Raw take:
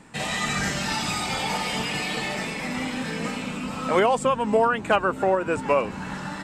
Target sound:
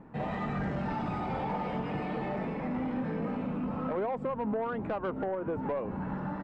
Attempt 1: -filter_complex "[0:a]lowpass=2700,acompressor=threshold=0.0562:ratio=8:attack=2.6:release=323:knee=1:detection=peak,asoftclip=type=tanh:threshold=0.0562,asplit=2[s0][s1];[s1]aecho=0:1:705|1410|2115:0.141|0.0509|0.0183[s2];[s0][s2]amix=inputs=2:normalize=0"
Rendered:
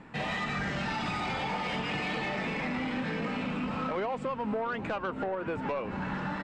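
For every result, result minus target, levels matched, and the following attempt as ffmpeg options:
2 kHz band +8.5 dB; echo-to-direct +7 dB
-filter_complex "[0:a]lowpass=910,acompressor=threshold=0.0562:ratio=8:attack=2.6:release=323:knee=1:detection=peak,asoftclip=type=tanh:threshold=0.0562,asplit=2[s0][s1];[s1]aecho=0:1:705|1410|2115:0.141|0.0509|0.0183[s2];[s0][s2]amix=inputs=2:normalize=0"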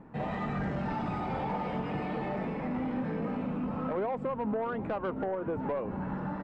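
echo-to-direct +7 dB
-filter_complex "[0:a]lowpass=910,acompressor=threshold=0.0562:ratio=8:attack=2.6:release=323:knee=1:detection=peak,asoftclip=type=tanh:threshold=0.0562,asplit=2[s0][s1];[s1]aecho=0:1:705|1410:0.0631|0.0227[s2];[s0][s2]amix=inputs=2:normalize=0"

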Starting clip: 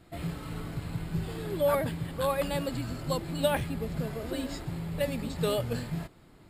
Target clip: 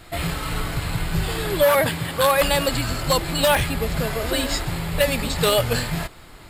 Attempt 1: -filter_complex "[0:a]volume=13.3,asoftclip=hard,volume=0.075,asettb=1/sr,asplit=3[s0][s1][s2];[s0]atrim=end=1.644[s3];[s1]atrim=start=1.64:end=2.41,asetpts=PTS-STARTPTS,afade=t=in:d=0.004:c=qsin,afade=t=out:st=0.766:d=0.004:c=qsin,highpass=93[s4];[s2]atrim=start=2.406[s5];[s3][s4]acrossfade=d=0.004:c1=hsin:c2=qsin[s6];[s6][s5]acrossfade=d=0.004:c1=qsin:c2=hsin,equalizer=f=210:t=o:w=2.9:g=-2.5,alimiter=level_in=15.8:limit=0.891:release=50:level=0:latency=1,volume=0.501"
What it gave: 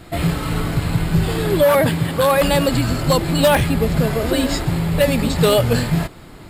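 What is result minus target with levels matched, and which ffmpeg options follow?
250 Hz band +5.0 dB
-filter_complex "[0:a]volume=13.3,asoftclip=hard,volume=0.075,asettb=1/sr,asplit=3[s0][s1][s2];[s0]atrim=end=1.644[s3];[s1]atrim=start=1.64:end=2.41,asetpts=PTS-STARTPTS,afade=t=in:d=0.004:c=qsin,afade=t=out:st=0.766:d=0.004:c=qsin,highpass=93[s4];[s2]atrim=start=2.406[s5];[s3][s4]acrossfade=d=0.004:c1=hsin:c2=qsin[s6];[s6][s5]acrossfade=d=0.004:c1=qsin:c2=hsin,equalizer=f=210:t=o:w=2.9:g=-12.5,alimiter=level_in=15.8:limit=0.891:release=50:level=0:latency=1,volume=0.501"

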